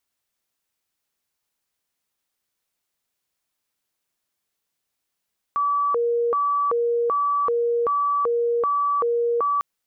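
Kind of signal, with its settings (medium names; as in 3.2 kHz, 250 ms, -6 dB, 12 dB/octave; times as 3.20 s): siren hi-lo 472–1150 Hz 1.3 per s sine -18.5 dBFS 4.05 s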